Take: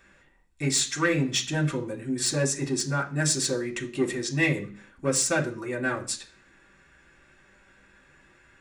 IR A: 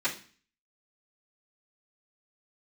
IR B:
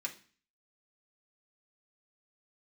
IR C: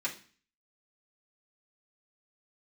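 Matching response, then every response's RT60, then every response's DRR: B; 0.40, 0.40, 0.40 s; -14.5, -2.0, -7.5 dB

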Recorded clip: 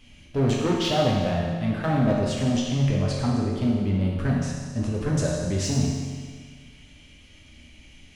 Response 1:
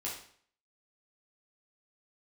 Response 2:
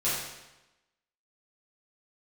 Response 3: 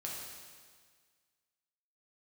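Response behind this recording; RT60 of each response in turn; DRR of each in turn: 3; 0.55, 1.0, 1.7 s; -5.5, -11.5, -4.0 dB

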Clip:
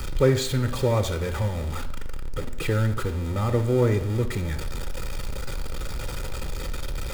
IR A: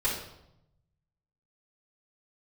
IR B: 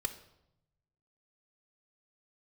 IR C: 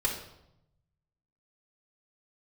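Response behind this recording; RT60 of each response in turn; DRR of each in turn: B; 0.80, 0.85, 0.80 s; -7.5, 7.0, -2.0 dB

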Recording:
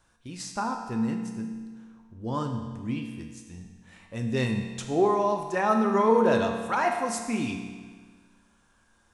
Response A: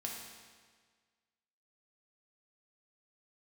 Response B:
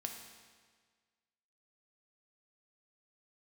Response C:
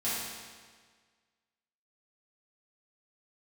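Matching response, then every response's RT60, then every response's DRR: B; 1.6, 1.6, 1.6 s; -1.5, 3.0, -11.0 dB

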